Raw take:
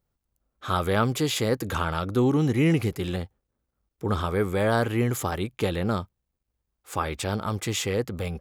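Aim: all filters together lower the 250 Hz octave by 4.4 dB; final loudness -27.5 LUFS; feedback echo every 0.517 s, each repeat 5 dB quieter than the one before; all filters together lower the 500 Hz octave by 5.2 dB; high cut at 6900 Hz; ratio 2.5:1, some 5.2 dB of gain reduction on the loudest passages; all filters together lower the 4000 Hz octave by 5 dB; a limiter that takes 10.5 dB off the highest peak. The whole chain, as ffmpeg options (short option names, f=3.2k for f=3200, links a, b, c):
-af "lowpass=6.9k,equalizer=f=250:t=o:g=-4.5,equalizer=f=500:t=o:g=-5,equalizer=f=4k:t=o:g=-6,acompressor=threshold=-28dB:ratio=2.5,alimiter=level_in=2.5dB:limit=-24dB:level=0:latency=1,volume=-2.5dB,aecho=1:1:517|1034|1551|2068|2585|3102|3619:0.562|0.315|0.176|0.0988|0.0553|0.031|0.0173,volume=7.5dB"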